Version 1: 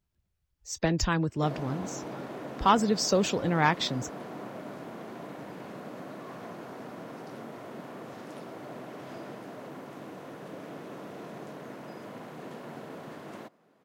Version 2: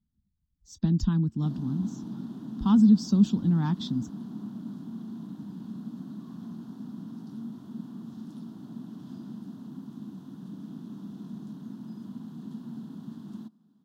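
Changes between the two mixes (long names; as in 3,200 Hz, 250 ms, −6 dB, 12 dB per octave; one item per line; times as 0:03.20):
speech: add high-shelf EQ 4,500 Hz −7 dB
master: add drawn EQ curve 130 Hz 0 dB, 220 Hz +12 dB, 530 Hz −26 dB, 910 Hz −12 dB, 1,600 Hz −16 dB, 2,200 Hz −29 dB, 3,400 Hz −5 dB, 8,400 Hz −9 dB, 14,000 Hz −7 dB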